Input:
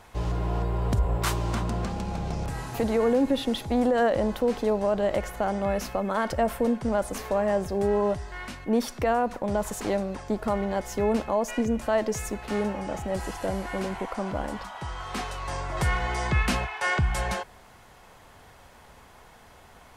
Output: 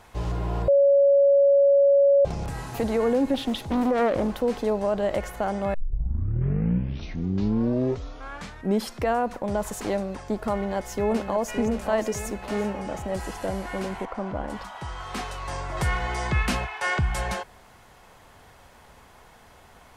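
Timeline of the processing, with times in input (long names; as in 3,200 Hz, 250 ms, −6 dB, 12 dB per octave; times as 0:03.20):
0:00.68–0:02.25: beep over 560 Hz −14 dBFS
0:03.34–0:04.36: highs frequency-modulated by the lows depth 0.54 ms
0:05.74: tape start 3.34 s
0:10.53–0:11.56: delay throw 570 ms, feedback 45%, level −7.5 dB
0:14.05–0:14.50: low-pass filter 1,900 Hz 6 dB per octave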